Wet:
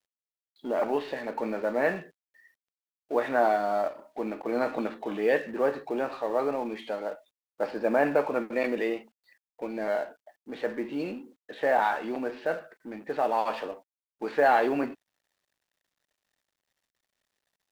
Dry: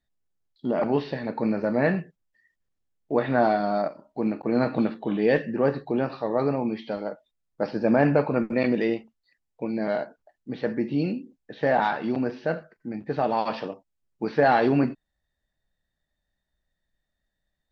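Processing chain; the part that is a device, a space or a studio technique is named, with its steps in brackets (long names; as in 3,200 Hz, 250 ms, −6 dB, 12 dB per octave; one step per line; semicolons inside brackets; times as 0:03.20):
phone line with mismatched companding (band-pass filter 400–3,300 Hz; mu-law and A-law mismatch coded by mu)
level −1.5 dB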